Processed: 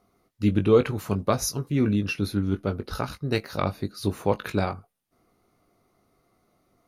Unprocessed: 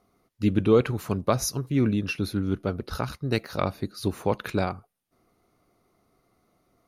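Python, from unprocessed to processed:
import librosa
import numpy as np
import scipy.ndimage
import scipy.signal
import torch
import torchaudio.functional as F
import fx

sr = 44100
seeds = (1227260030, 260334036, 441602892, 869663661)

y = fx.doubler(x, sr, ms=20.0, db=-9.0)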